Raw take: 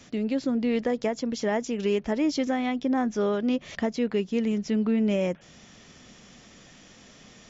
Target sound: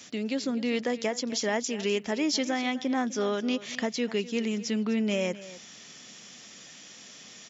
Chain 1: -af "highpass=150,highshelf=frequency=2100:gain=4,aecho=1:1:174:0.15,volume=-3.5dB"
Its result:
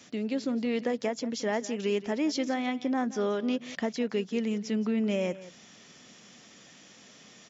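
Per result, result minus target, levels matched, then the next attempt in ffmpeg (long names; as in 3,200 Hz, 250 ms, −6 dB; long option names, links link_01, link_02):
echo 79 ms early; 4,000 Hz band −5.5 dB
-af "highpass=150,highshelf=frequency=2100:gain=4,aecho=1:1:253:0.15,volume=-3.5dB"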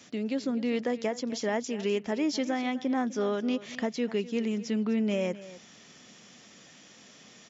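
4,000 Hz band −5.5 dB
-af "highpass=150,highshelf=frequency=2100:gain=12.5,aecho=1:1:253:0.15,volume=-3.5dB"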